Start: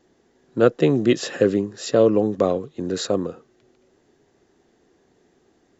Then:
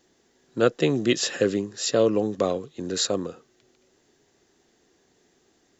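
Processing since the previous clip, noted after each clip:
high-shelf EQ 2,200 Hz +11.5 dB
level −5 dB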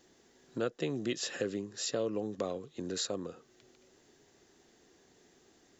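downward compressor 2 to 1, threshold −41 dBFS, peak gain reduction 15 dB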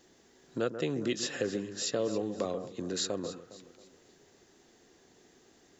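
delay that swaps between a low-pass and a high-pass 136 ms, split 1,800 Hz, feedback 62%, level −10 dB
level +2 dB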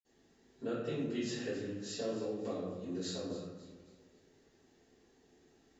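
convolution reverb RT60 0.95 s, pre-delay 46 ms
level +14 dB

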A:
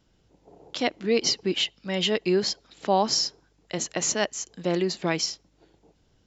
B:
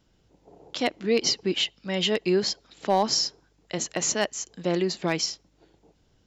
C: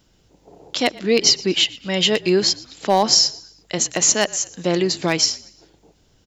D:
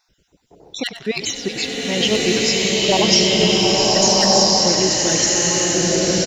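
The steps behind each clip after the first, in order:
hard clipping −13 dBFS, distortion −27 dB
high-shelf EQ 4,000 Hz +7 dB; echo with shifted repeats 117 ms, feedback 38%, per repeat −38 Hz, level −21 dB; level +5.5 dB
time-frequency cells dropped at random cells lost 34%; echo with shifted repeats 95 ms, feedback 42%, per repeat −58 Hz, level −12 dB; slow-attack reverb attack 1,450 ms, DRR −6.5 dB; level −1 dB

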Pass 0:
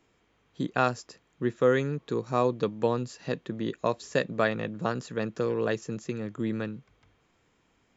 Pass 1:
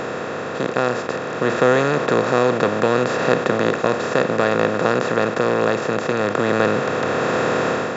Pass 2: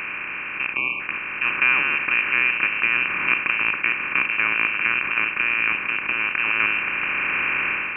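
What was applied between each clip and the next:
compressor on every frequency bin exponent 0.2; automatic gain control gain up to 8 dB; level −1 dB
time-frequency box erased 0:00.76–0:01.01, 720–1,700 Hz; voice inversion scrambler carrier 2,900 Hz; level −3.5 dB

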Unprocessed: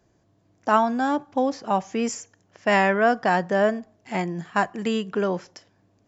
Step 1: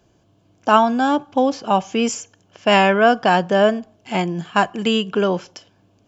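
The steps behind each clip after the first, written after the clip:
parametric band 3,000 Hz +8.5 dB 0.37 octaves
notch filter 1,900 Hz, Q 5.8
level +5.5 dB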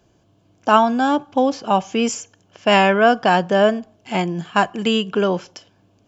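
no processing that can be heard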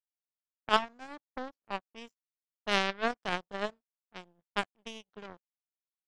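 low-pass that shuts in the quiet parts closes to 530 Hz, open at −13 dBFS
power curve on the samples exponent 3
level −6.5 dB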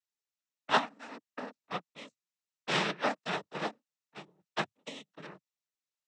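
cochlear-implant simulation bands 12

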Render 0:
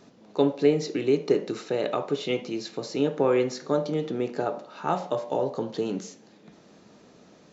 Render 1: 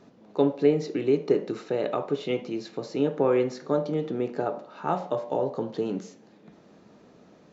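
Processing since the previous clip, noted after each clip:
high-shelf EQ 3,200 Hz −10 dB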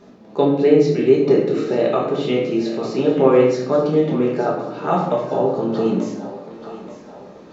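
feedback echo with a high-pass in the loop 883 ms, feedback 54%, high-pass 360 Hz, level −13 dB
rectangular room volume 190 cubic metres, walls mixed, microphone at 1.3 metres
level +4.5 dB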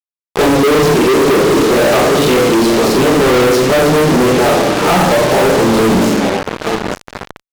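tape wow and flutter 24 cents
fuzz pedal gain 39 dB, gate −32 dBFS
level +4.5 dB

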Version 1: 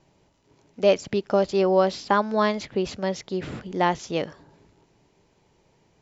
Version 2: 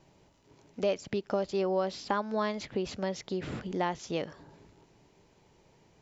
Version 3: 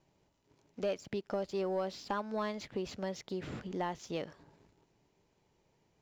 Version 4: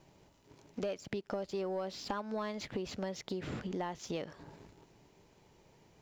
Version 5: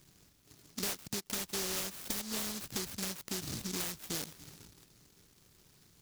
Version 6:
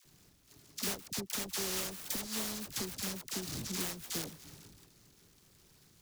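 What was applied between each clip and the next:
downward compressor 2 to 1, threshold −34 dBFS, peak gain reduction 11.5 dB
leveller curve on the samples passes 1; level −8.5 dB
downward compressor 3 to 1, threshold −48 dBFS, peak gain reduction 13.5 dB; level +9.5 dB
short delay modulated by noise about 5,200 Hz, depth 0.5 ms
all-pass dispersion lows, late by 57 ms, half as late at 700 Hz

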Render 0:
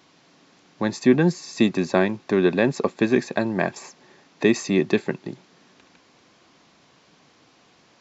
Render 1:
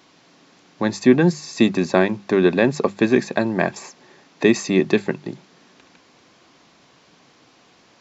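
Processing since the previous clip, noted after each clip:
mains-hum notches 50/100/150/200 Hz
level +3 dB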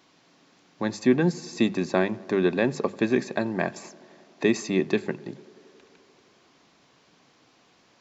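tape delay 89 ms, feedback 89%, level −21.5 dB, low-pass 2,100 Hz
level −6.5 dB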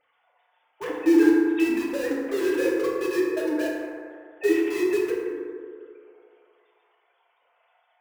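three sine waves on the formant tracks
in parallel at −8 dB: wrap-around overflow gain 25.5 dB
on the sum: feedback delay network reverb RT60 2.1 s, low-frequency decay 0.8×, high-frequency decay 0.35×, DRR −5.5 dB
level −5.5 dB

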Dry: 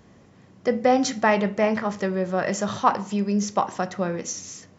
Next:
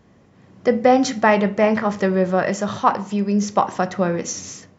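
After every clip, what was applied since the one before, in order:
high-shelf EQ 4,900 Hz −6 dB
automatic gain control gain up to 11.5 dB
level −1 dB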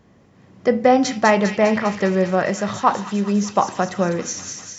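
delay with a high-pass on its return 201 ms, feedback 68%, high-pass 2,400 Hz, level −5 dB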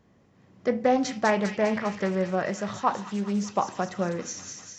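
highs frequency-modulated by the lows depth 0.16 ms
level −8 dB

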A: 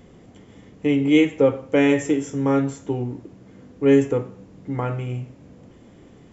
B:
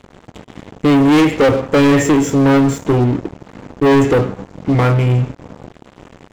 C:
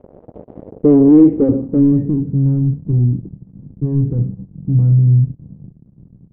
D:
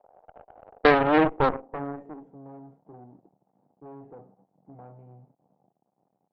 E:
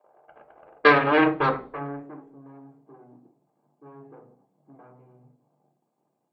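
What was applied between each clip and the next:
leveller curve on the samples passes 5; high-shelf EQ 4,400 Hz −5.5 dB; level −1.5 dB
low-pass filter sweep 560 Hz → 160 Hz, 0:00.60–0:02.40; level −2.5 dB
high-pass with resonance 770 Hz, resonance Q 4.9; harmonic generator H 3 −11 dB, 4 −26 dB, 6 −10 dB, 8 −16 dB, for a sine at −10 dBFS; speech leveller 2 s; level +5 dB
convolution reverb RT60 0.40 s, pre-delay 3 ms, DRR 3 dB

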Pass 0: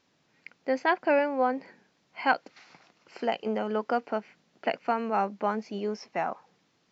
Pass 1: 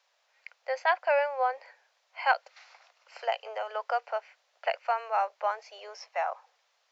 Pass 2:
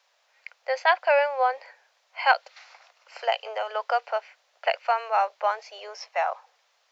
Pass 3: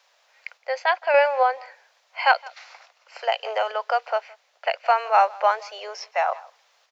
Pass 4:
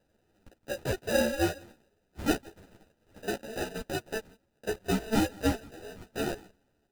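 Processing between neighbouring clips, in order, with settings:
Butterworth high-pass 540 Hz 48 dB per octave
dynamic equaliser 3,700 Hz, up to +5 dB, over −51 dBFS, Q 1.4; level +4.5 dB
single-tap delay 166 ms −23.5 dB; sample-and-hold tremolo; level +6 dB
sample-rate reduction 1,100 Hz, jitter 0%; string-ensemble chorus; level −6 dB

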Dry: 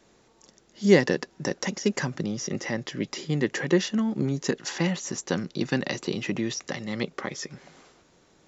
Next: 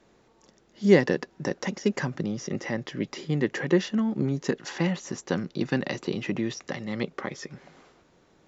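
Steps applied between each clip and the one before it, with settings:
low-pass filter 2,900 Hz 6 dB per octave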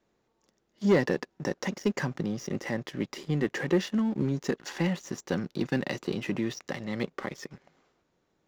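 leveller curve on the samples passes 2
level −9 dB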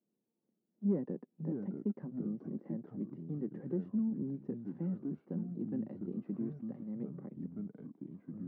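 delay with pitch and tempo change per echo 355 ms, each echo −4 semitones, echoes 2, each echo −6 dB
four-pole ladder band-pass 240 Hz, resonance 45%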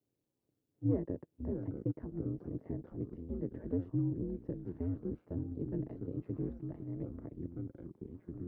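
ring modulation 87 Hz
level +3 dB

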